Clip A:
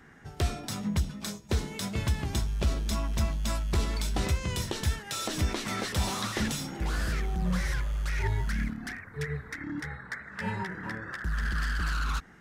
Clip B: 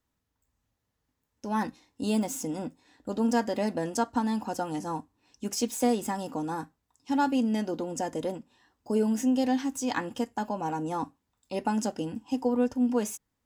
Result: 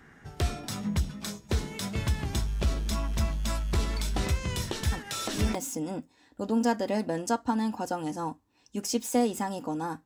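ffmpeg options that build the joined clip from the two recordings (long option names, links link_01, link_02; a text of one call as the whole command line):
ffmpeg -i cue0.wav -i cue1.wav -filter_complex "[1:a]asplit=2[link_01][link_02];[0:a]apad=whole_dur=10.05,atrim=end=10.05,atrim=end=5.552[link_03];[link_02]atrim=start=2.228:end=6.73[link_04];[link_01]atrim=start=1.6:end=2.23,asetpts=PTS-STARTPTS,volume=-6.5dB,afade=type=in:duration=0.004:curve=hsin,afade=type=out:start_time=0.626:duration=0.004:curve=hsin,adelay=4920[link_05];[link_03][link_04]acrossfade=duration=0.004:curve1=hsin:curve2=hsin[link_06];[link_06][link_05]amix=inputs=2:normalize=0" out.wav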